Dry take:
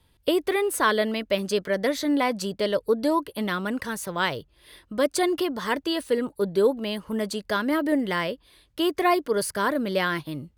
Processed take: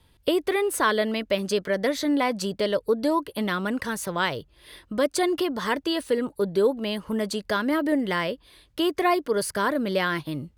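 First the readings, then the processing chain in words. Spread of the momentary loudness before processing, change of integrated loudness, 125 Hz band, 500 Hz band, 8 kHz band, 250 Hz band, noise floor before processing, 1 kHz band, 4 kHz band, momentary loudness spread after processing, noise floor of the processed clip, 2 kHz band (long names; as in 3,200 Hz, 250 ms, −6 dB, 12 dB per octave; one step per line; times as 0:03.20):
7 LU, 0.0 dB, +1.0 dB, 0.0 dB, 0.0 dB, 0.0 dB, −63 dBFS, 0.0 dB, 0.0 dB, 6 LU, −61 dBFS, 0.0 dB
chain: high-shelf EQ 12,000 Hz −4 dB
in parallel at −0.5 dB: downward compressor, threshold −30 dBFS, peak gain reduction 14 dB
on the sum: level −2.5 dB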